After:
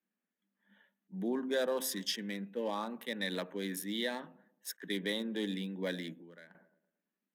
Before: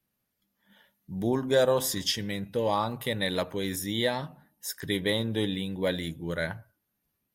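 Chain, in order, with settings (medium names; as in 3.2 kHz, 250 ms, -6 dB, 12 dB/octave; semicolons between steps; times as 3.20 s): local Wiener filter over 9 samples; steep high-pass 180 Hz 72 dB/octave; peaking EQ 760 Hz -5.5 dB 1.9 oct; band-stop 7.2 kHz, Q 15; on a send: feedback echo behind a low-pass 111 ms, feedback 43%, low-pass 810 Hz, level -23 dB; 6.15–6.55 s: on the sum: compression 16:1, threshold -48 dBFS, peak gain reduction 19.5 dB; in parallel at -2 dB: peak limiter -23.5 dBFS, peak gain reduction 9 dB; on the sum: peaking EQ 1.7 kHz +5 dB 0.23 oct; attacks held to a fixed rise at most 570 dB/s; trim -9 dB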